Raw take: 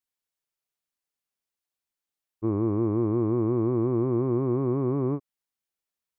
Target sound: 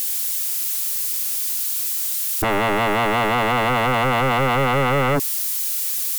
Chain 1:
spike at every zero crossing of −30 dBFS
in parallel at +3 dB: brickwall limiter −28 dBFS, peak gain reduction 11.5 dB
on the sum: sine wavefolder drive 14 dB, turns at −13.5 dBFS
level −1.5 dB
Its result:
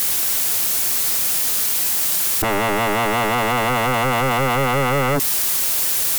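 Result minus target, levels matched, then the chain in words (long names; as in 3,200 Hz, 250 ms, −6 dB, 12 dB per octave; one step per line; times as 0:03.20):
spike at every zero crossing: distortion +11 dB
spike at every zero crossing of −41.5 dBFS
in parallel at +3 dB: brickwall limiter −28 dBFS, peak gain reduction 11.5 dB
on the sum: sine wavefolder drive 14 dB, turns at −13.5 dBFS
level −1.5 dB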